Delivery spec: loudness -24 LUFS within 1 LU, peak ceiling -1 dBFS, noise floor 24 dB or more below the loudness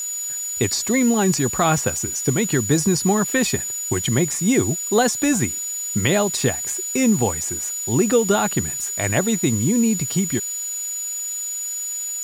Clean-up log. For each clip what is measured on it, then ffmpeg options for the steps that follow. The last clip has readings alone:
steady tone 6.9 kHz; tone level -25 dBFS; noise floor -28 dBFS; noise floor target -44 dBFS; loudness -20.0 LUFS; peak level -5.0 dBFS; loudness target -24.0 LUFS
-> -af "bandreject=f=6900:w=30"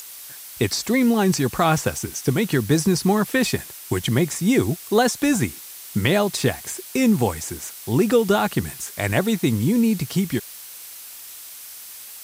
steady tone not found; noise floor -39 dBFS; noise floor target -46 dBFS
-> -af "afftdn=nr=7:nf=-39"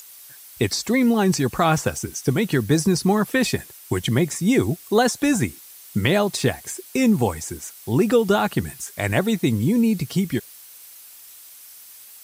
noise floor -44 dBFS; noise floor target -46 dBFS
-> -af "afftdn=nr=6:nf=-44"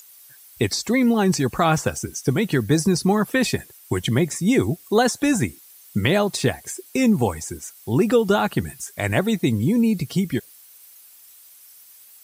noise floor -48 dBFS; loudness -21.5 LUFS; peak level -5.5 dBFS; loudness target -24.0 LUFS
-> -af "volume=0.75"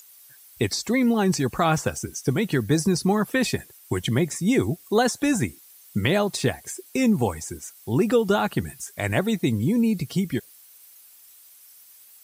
loudness -24.0 LUFS; peak level -8.0 dBFS; noise floor -51 dBFS

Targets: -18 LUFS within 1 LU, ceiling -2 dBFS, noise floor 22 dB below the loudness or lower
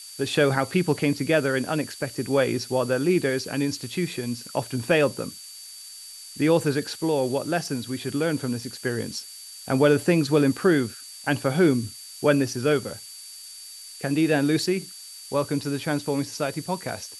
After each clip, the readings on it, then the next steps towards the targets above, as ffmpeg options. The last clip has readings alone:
steady tone 4.6 kHz; tone level -43 dBFS; noise floor -42 dBFS; noise floor target -47 dBFS; loudness -24.5 LUFS; peak level -6.5 dBFS; loudness target -18.0 LUFS
-> -af "bandreject=f=4600:w=30"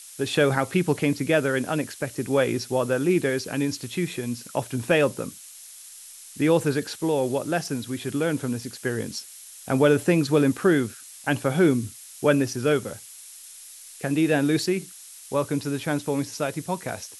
steady tone not found; noise floor -45 dBFS; noise floor target -47 dBFS
-> -af "afftdn=nr=6:nf=-45"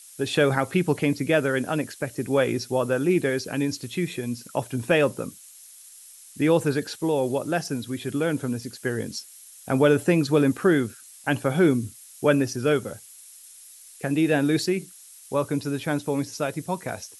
noise floor -48 dBFS; loudness -24.5 LUFS; peak level -6.5 dBFS; loudness target -18.0 LUFS
-> -af "volume=2.11,alimiter=limit=0.794:level=0:latency=1"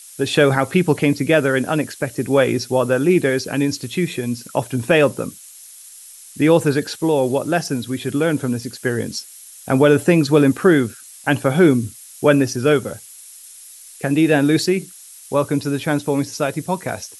loudness -18.0 LUFS; peak level -2.0 dBFS; noise floor -41 dBFS

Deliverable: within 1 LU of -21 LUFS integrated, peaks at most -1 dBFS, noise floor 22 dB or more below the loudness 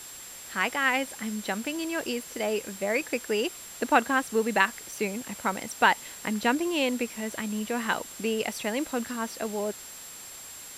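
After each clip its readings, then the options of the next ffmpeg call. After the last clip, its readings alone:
steady tone 7.5 kHz; tone level -44 dBFS; noise floor -44 dBFS; noise floor target -51 dBFS; loudness -28.5 LUFS; peak level -5.5 dBFS; loudness target -21.0 LUFS
-> -af "bandreject=f=7500:w=30"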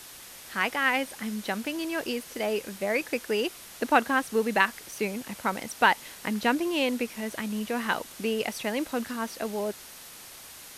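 steady tone not found; noise floor -46 dBFS; noise floor target -51 dBFS
-> -af "afftdn=nr=6:nf=-46"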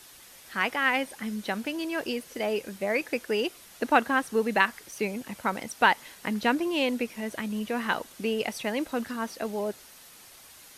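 noise floor -51 dBFS; loudness -28.5 LUFS; peak level -5.5 dBFS; loudness target -21.0 LUFS
-> -af "volume=2.37,alimiter=limit=0.891:level=0:latency=1"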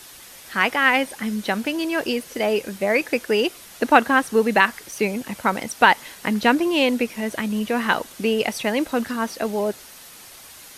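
loudness -21.5 LUFS; peak level -1.0 dBFS; noise floor -44 dBFS

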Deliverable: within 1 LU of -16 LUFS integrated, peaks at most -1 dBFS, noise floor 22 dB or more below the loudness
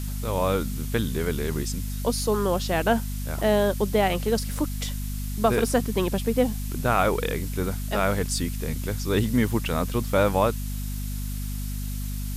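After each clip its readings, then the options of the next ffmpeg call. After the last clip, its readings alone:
hum 50 Hz; highest harmonic 250 Hz; hum level -28 dBFS; noise floor -30 dBFS; noise floor target -48 dBFS; loudness -26.0 LUFS; peak level -8.0 dBFS; loudness target -16.0 LUFS
-> -af "bandreject=f=50:t=h:w=6,bandreject=f=100:t=h:w=6,bandreject=f=150:t=h:w=6,bandreject=f=200:t=h:w=6,bandreject=f=250:t=h:w=6"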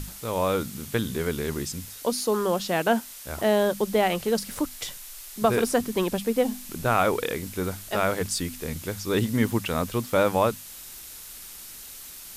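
hum not found; noise floor -42 dBFS; noise floor target -48 dBFS
-> -af "afftdn=nr=6:nf=-42"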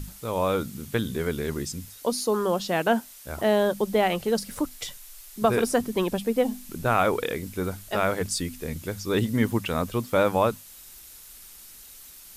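noise floor -47 dBFS; noise floor target -48 dBFS
-> -af "afftdn=nr=6:nf=-47"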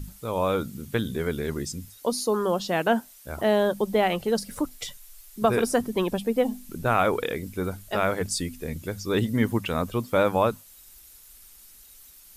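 noise floor -51 dBFS; loudness -26.5 LUFS; peak level -9.0 dBFS; loudness target -16.0 LUFS
-> -af "volume=3.35,alimiter=limit=0.891:level=0:latency=1"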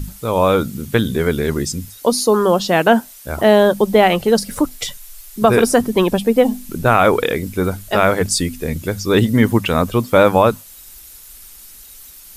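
loudness -16.0 LUFS; peak level -1.0 dBFS; noise floor -40 dBFS

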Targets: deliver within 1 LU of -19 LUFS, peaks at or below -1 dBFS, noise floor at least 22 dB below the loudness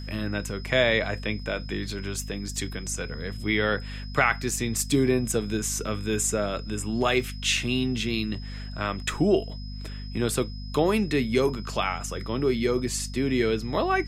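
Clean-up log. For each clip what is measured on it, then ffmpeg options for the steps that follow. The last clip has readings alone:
hum 50 Hz; highest harmonic 250 Hz; hum level -34 dBFS; steady tone 5.1 kHz; tone level -45 dBFS; loudness -26.5 LUFS; peak level -6.5 dBFS; loudness target -19.0 LUFS
-> -af "bandreject=f=50:t=h:w=6,bandreject=f=100:t=h:w=6,bandreject=f=150:t=h:w=6,bandreject=f=200:t=h:w=6,bandreject=f=250:t=h:w=6"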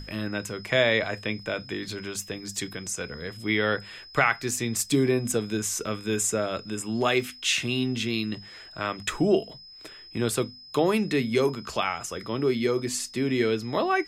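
hum not found; steady tone 5.1 kHz; tone level -45 dBFS
-> -af "bandreject=f=5100:w=30"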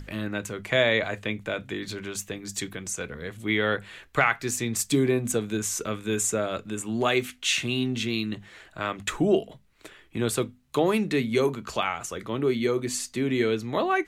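steady tone not found; loudness -27.0 LUFS; peak level -7.0 dBFS; loudness target -19.0 LUFS
-> -af "volume=2.51,alimiter=limit=0.891:level=0:latency=1"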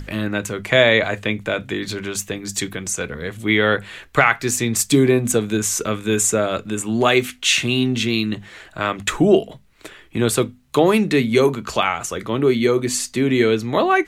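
loudness -19.0 LUFS; peak level -1.0 dBFS; noise floor -49 dBFS

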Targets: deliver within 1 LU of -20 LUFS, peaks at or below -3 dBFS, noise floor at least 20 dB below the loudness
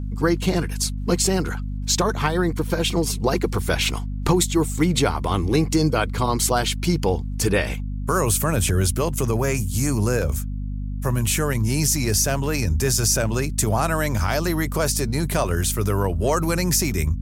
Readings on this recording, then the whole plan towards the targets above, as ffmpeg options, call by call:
hum 50 Hz; highest harmonic 250 Hz; hum level -25 dBFS; loudness -22.0 LUFS; peak level -6.5 dBFS; loudness target -20.0 LUFS
-> -af "bandreject=f=50:t=h:w=6,bandreject=f=100:t=h:w=6,bandreject=f=150:t=h:w=6,bandreject=f=200:t=h:w=6,bandreject=f=250:t=h:w=6"
-af "volume=1.26"

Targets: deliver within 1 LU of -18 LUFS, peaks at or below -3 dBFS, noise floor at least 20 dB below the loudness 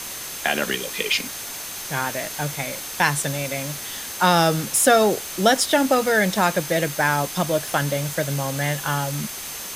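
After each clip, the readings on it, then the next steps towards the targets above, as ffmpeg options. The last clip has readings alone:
steady tone 6.3 kHz; tone level -40 dBFS; noise floor -33 dBFS; noise floor target -42 dBFS; loudness -22.0 LUFS; peak level -3.0 dBFS; loudness target -18.0 LUFS
-> -af "bandreject=f=6300:w=30"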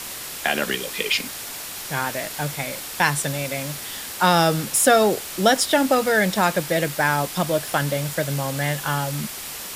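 steady tone not found; noise floor -34 dBFS; noise floor target -42 dBFS
-> -af "afftdn=nr=8:nf=-34"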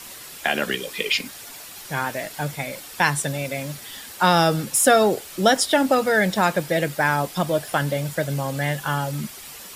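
noise floor -40 dBFS; noise floor target -42 dBFS
-> -af "afftdn=nr=6:nf=-40"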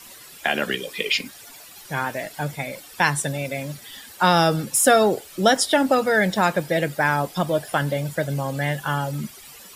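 noise floor -44 dBFS; loudness -22.0 LUFS; peak level -3.5 dBFS; loudness target -18.0 LUFS
-> -af "volume=1.58,alimiter=limit=0.708:level=0:latency=1"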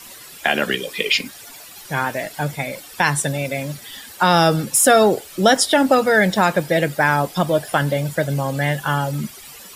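loudness -18.5 LUFS; peak level -3.0 dBFS; noise floor -40 dBFS

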